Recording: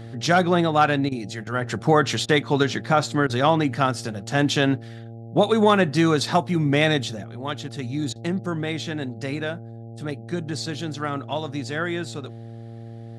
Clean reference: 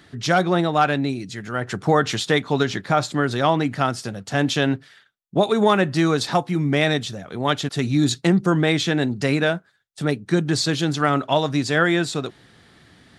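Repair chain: de-hum 114.7 Hz, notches 7; interpolate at 1.09/1.44/2.26/3.27/8.13, 25 ms; gain correction +8.5 dB, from 7.24

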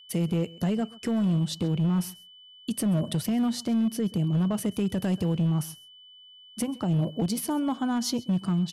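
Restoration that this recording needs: clip repair -20.5 dBFS; notch 3000 Hz, Q 30; inverse comb 0.133 s -21.5 dB

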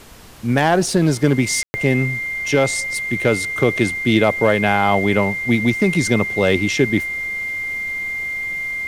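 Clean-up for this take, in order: de-click; notch 2100 Hz, Q 30; room tone fill 1.63–1.74; noise print and reduce 30 dB

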